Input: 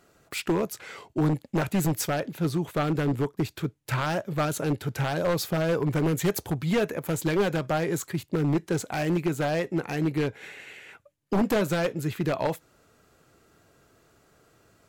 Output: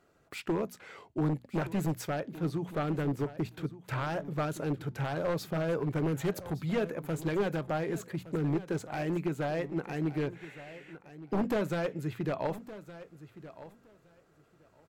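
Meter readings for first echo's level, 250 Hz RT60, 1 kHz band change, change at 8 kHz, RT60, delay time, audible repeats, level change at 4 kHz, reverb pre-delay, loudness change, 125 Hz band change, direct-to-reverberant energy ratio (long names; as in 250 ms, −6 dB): −15.5 dB, no reverb audible, −6.0 dB, −13.0 dB, no reverb audible, 1,166 ms, 2, −10.0 dB, no reverb audible, −6.0 dB, −6.0 dB, no reverb audible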